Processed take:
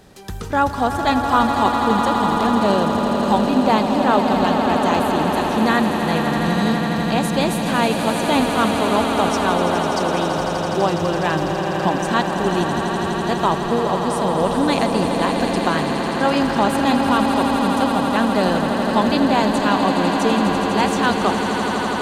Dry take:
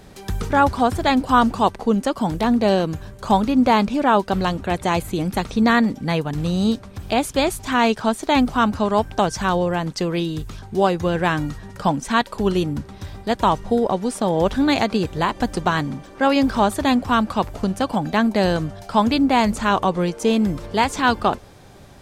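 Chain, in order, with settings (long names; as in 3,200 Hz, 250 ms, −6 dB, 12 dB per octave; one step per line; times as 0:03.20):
low-shelf EQ 110 Hz −6 dB
notch filter 2,200 Hz, Q 17
on a send: echo that builds up and dies away 83 ms, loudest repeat 8, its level −9.5 dB
on the sum: level −1.5 dB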